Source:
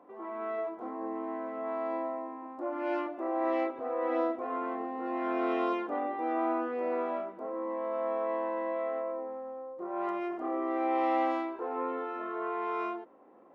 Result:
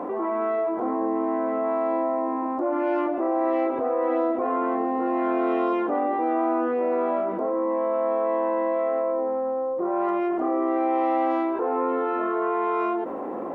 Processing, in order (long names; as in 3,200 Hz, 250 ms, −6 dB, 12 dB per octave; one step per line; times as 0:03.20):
high-shelf EQ 2,000 Hz −11 dB
envelope flattener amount 70%
level +6 dB